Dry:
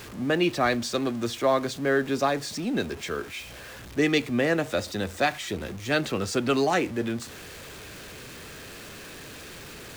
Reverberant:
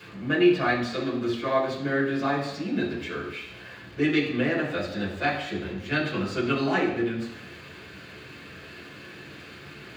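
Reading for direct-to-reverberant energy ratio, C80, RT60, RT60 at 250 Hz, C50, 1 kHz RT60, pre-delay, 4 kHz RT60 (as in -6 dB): -6.5 dB, 8.5 dB, 0.85 s, 0.80 s, 5.5 dB, 0.85 s, 3 ms, 0.90 s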